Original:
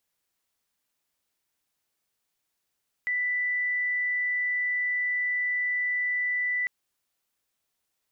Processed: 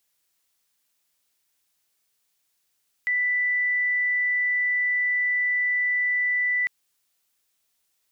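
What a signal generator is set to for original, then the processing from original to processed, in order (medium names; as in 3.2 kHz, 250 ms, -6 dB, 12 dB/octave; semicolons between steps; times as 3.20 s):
tone sine 1.98 kHz -24.5 dBFS 3.60 s
treble shelf 2 kHz +8 dB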